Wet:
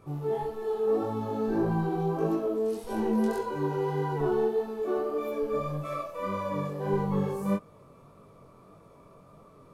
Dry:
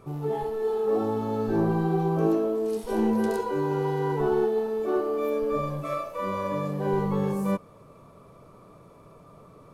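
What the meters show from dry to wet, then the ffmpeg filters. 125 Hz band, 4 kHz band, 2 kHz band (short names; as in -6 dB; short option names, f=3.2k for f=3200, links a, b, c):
-2.5 dB, -3.0 dB, -3.0 dB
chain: -af "flanger=delay=19:depth=3.8:speed=1.7"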